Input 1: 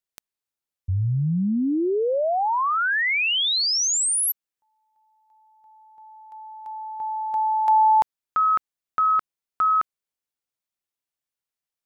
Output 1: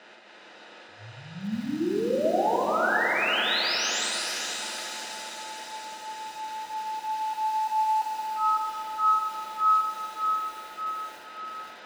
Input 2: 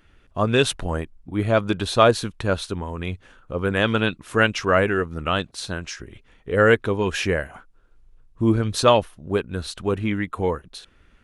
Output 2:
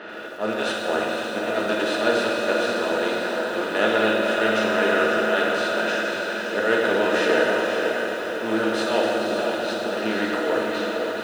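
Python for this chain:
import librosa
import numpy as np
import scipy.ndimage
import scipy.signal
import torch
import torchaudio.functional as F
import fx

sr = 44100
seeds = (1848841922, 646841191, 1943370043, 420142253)

p1 = fx.bin_compress(x, sr, power=0.4)
p2 = fx.auto_swell(p1, sr, attack_ms=110.0)
p3 = scipy.signal.sosfilt(scipy.signal.butter(2, 320.0, 'highpass', fs=sr, output='sos'), p2)
p4 = fx.env_lowpass(p3, sr, base_hz=2800.0, full_db=-15.0)
p5 = fx.air_absorb(p4, sr, metres=69.0)
p6 = fx.notch_comb(p5, sr, f0_hz=1100.0)
p7 = p6 + fx.echo_diffused(p6, sr, ms=528, feedback_pct=57, wet_db=-5.0, dry=0)
p8 = fx.rev_fdn(p7, sr, rt60_s=2.3, lf_ratio=0.9, hf_ratio=0.85, size_ms=28.0, drr_db=-3.0)
p9 = fx.echo_crushed(p8, sr, ms=85, feedback_pct=80, bits=5, wet_db=-14.5)
y = p9 * librosa.db_to_amplitude(-9.0)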